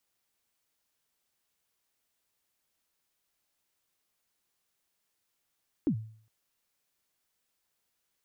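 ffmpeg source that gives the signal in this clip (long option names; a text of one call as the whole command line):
ffmpeg -f lavfi -i "aevalsrc='0.0891*pow(10,-3*t/0.52)*sin(2*PI*(340*0.082/log(110/340)*(exp(log(110/340)*min(t,0.082)/0.082)-1)+110*max(t-0.082,0)))':duration=0.41:sample_rate=44100" out.wav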